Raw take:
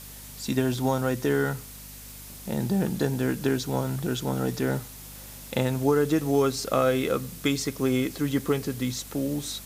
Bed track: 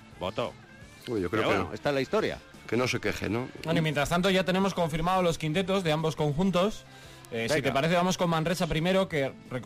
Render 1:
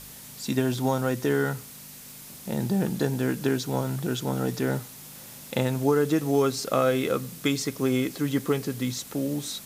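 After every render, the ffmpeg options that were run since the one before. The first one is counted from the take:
ffmpeg -i in.wav -af "bandreject=frequency=50:width_type=h:width=4,bandreject=frequency=100:width_type=h:width=4" out.wav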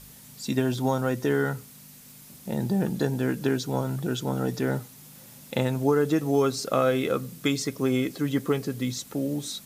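ffmpeg -i in.wav -af "afftdn=noise_reduction=6:noise_floor=-44" out.wav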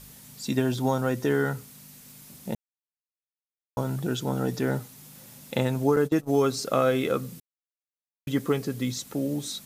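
ffmpeg -i in.wav -filter_complex "[0:a]asettb=1/sr,asplit=3[link_01][link_02][link_03];[link_01]atrim=end=5.964[link_04];[link_02]atrim=start=5.96:end=6.36,asetpts=PTS-STARTPTS,afade=type=in:duration=0.004:curve=qsin,afade=type=out:start_time=0.396:duration=0.004:curve=qsin,agate=range=-25dB:threshold=-28dB:ratio=16:release=100:detection=peak[link_05];[link_03]atrim=start=6.356[link_06];[link_04][link_05]acrossfade=duration=0.004:curve1=hsin:curve2=qsin[link_07];[link_07][link_06]acrossfade=duration=0.004:curve1=qsin:curve2=hsin,asplit=5[link_08][link_09][link_10][link_11][link_12];[link_08]atrim=end=2.55,asetpts=PTS-STARTPTS,afade=type=out:start_time=2.546:duration=0.004:curve=hsin[link_13];[link_09]atrim=start=2.55:end=3.77,asetpts=PTS-STARTPTS,volume=0[link_14];[link_10]atrim=start=3.77:end=7.4,asetpts=PTS-STARTPTS,afade=type=in:duration=0.004:curve=hsin,afade=type=out:start_time=3.626:duration=0.004:curve=hsin[link_15];[link_11]atrim=start=7.4:end=8.27,asetpts=PTS-STARTPTS,volume=0[link_16];[link_12]atrim=start=8.27,asetpts=PTS-STARTPTS,afade=type=in:duration=0.004:curve=hsin[link_17];[link_13][link_14][link_15][link_16][link_17]concat=n=5:v=0:a=1" out.wav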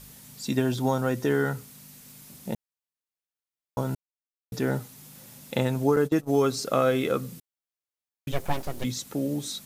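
ffmpeg -i in.wav -filter_complex "[0:a]asplit=3[link_01][link_02][link_03];[link_01]afade=type=out:start_time=8.31:duration=0.02[link_04];[link_02]aeval=exprs='abs(val(0))':channel_layout=same,afade=type=in:start_time=8.31:duration=0.02,afade=type=out:start_time=8.83:duration=0.02[link_05];[link_03]afade=type=in:start_time=8.83:duration=0.02[link_06];[link_04][link_05][link_06]amix=inputs=3:normalize=0,asplit=3[link_07][link_08][link_09];[link_07]atrim=end=3.95,asetpts=PTS-STARTPTS,afade=type=out:start_time=3.946:duration=0.004:curve=hsin[link_10];[link_08]atrim=start=3.95:end=4.52,asetpts=PTS-STARTPTS,volume=0[link_11];[link_09]atrim=start=4.52,asetpts=PTS-STARTPTS,afade=type=in:duration=0.004:curve=hsin[link_12];[link_10][link_11][link_12]concat=n=3:v=0:a=1" out.wav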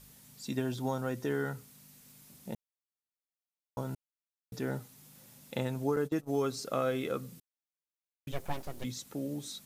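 ffmpeg -i in.wav -af "volume=-8.5dB" out.wav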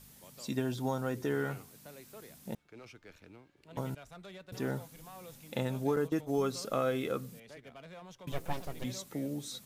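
ffmpeg -i in.wav -i bed.wav -filter_complex "[1:a]volume=-25dB[link_01];[0:a][link_01]amix=inputs=2:normalize=0" out.wav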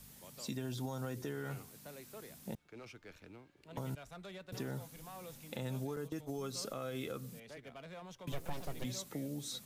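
ffmpeg -i in.wav -filter_complex "[0:a]alimiter=level_in=2dB:limit=-24dB:level=0:latency=1:release=115,volume=-2dB,acrossover=split=140|3000[link_01][link_02][link_03];[link_02]acompressor=threshold=-41dB:ratio=3[link_04];[link_01][link_04][link_03]amix=inputs=3:normalize=0" out.wav

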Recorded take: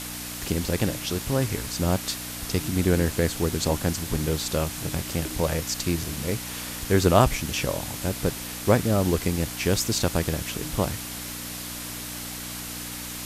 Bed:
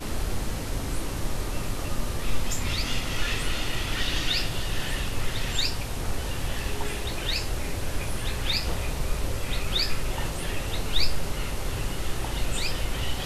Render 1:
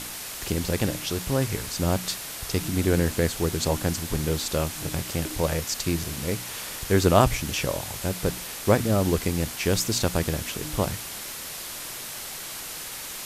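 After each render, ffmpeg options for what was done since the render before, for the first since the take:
ffmpeg -i in.wav -af "bandreject=frequency=60:width_type=h:width=4,bandreject=frequency=120:width_type=h:width=4,bandreject=frequency=180:width_type=h:width=4,bandreject=frequency=240:width_type=h:width=4,bandreject=frequency=300:width_type=h:width=4" out.wav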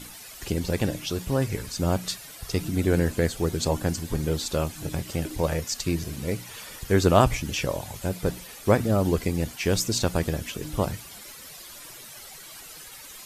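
ffmpeg -i in.wav -af "afftdn=noise_reduction=12:noise_floor=-37" out.wav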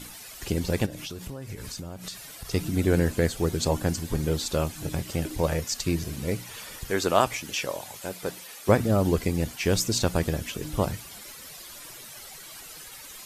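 ffmpeg -i in.wav -filter_complex "[0:a]asplit=3[link_01][link_02][link_03];[link_01]afade=type=out:start_time=0.85:duration=0.02[link_04];[link_02]acompressor=threshold=-32dB:ratio=20:attack=3.2:release=140:knee=1:detection=peak,afade=type=in:start_time=0.85:duration=0.02,afade=type=out:start_time=2.5:duration=0.02[link_05];[link_03]afade=type=in:start_time=2.5:duration=0.02[link_06];[link_04][link_05][link_06]amix=inputs=3:normalize=0,asettb=1/sr,asplit=3[link_07][link_08][link_09];[link_07]atrim=end=6.904[link_10];[link_08]atrim=start=6.9:end=8.69,asetpts=PTS-STARTPTS,afade=type=in:duration=0.004:curve=qsin,afade=type=out:start_time=1.786:duration=0.004:curve=qsin,highpass=frequency=570:poles=1[link_11];[link_09]atrim=start=8.686[link_12];[link_10][link_11]acrossfade=duration=0.004:curve1=hsin:curve2=qsin[link_13];[link_13][link_12]acrossfade=duration=0.004:curve1=qsin:curve2=hsin" out.wav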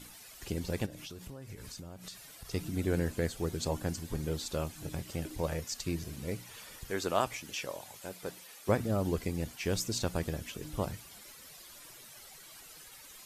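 ffmpeg -i in.wav -af "volume=-8.5dB" out.wav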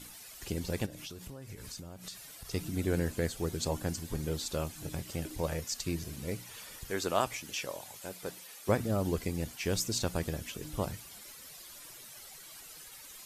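ffmpeg -i in.wav -af "equalizer=frequency=13000:width_type=o:width=2.3:gain=3" out.wav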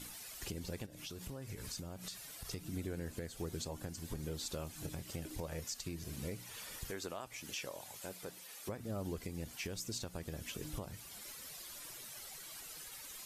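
ffmpeg -i in.wav -af "acompressor=threshold=-34dB:ratio=6,alimiter=level_in=6.5dB:limit=-24dB:level=0:latency=1:release=468,volume=-6.5dB" out.wav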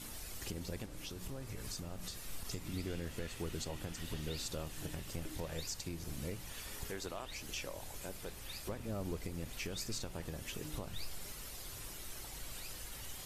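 ffmpeg -i in.wav -i bed.wav -filter_complex "[1:a]volume=-22dB[link_01];[0:a][link_01]amix=inputs=2:normalize=0" out.wav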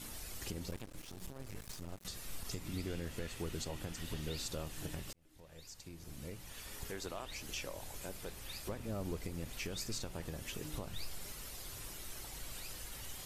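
ffmpeg -i in.wav -filter_complex "[0:a]asettb=1/sr,asplit=3[link_01][link_02][link_03];[link_01]atrim=end=0.714[link_04];[link_02]atrim=start=0.71:end=2.05,asetpts=PTS-STARTPTS,afade=type=in:duration=0.004:curve=qsin,afade=type=out:start_time=1.336:duration=0.004:curve=qsin,aeval=exprs='max(val(0),0)':channel_layout=same[link_05];[link_03]atrim=start=2.046[link_06];[link_04][link_05]acrossfade=duration=0.004:curve1=hsin:curve2=qsin[link_07];[link_07][link_06]acrossfade=duration=0.004:curve1=qsin:curve2=hsin,asplit=2[link_08][link_09];[link_08]atrim=end=5.13,asetpts=PTS-STARTPTS,afade=type=out:start_time=5.126:duration=0.004:curve=hsin[link_10];[link_09]atrim=start=5.13,asetpts=PTS-STARTPTS,afade=type=in:duration=1.99[link_11];[link_10][link_11]concat=n=2:v=0:a=1" out.wav

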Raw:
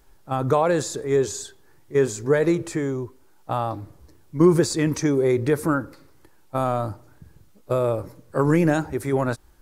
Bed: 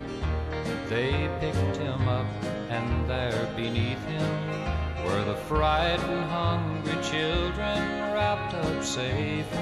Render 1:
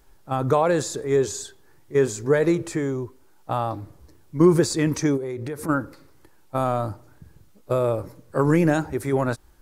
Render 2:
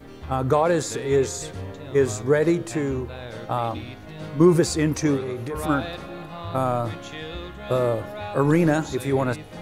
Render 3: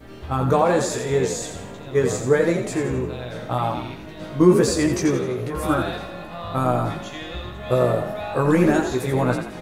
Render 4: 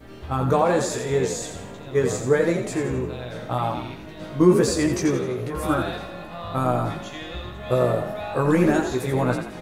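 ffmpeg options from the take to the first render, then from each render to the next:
ffmpeg -i in.wav -filter_complex "[0:a]asplit=3[link_01][link_02][link_03];[link_01]afade=type=out:start_time=5.16:duration=0.02[link_04];[link_02]acompressor=threshold=-28dB:ratio=5:attack=3.2:release=140:knee=1:detection=peak,afade=type=in:start_time=5.16:duration=0.02,afade=type=out:start_time=5.68:duration=0.02[link_05];[link_03]afade=type=in:start_time=5.68:duration=0.02[link_06];[link_04][link_05][link_06]amix=inputs=3:normalize=0" out.wav
ffmpeg -i in.wav -i bed.wav -filter_complex "[1:a]volume=-8dB[link_01];[0:a][link_01]amix=inputs=2:normalize=0" out.wav
ffmpeg -i in.wav -filter_complex "[0:a]asplit=2[link_01][link_02];[link_02]adelay=16,volume=-4dB[link_03];[link_01][link_03]amix=inputs=2:normalize=0,asplit=6[link_04][link_05][link_06][link_07][link_08][link_09];[link_05]adelay=85,afreqshift=45,volume=-7.5dB[link_10];[link_06]adelay=170,afreqshift=90,volume=-14.8dB[link_11];[link_07]adelay=255,afreqshift=135,volume=-22.2dB[link_12];[link_08]adelay=340,afreqshift=180,volume=-29.5dB[link_13];[link_09]adelay=425,afreqshift=225,volume=-36.8dB[link_14];[link_04][link_10][link_11][link_12][link_13][link_14]amix=inputs=6:normalize=0" out.wav
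ffmpeg -i in.wav -af "volume=-1.5dB" out.wav

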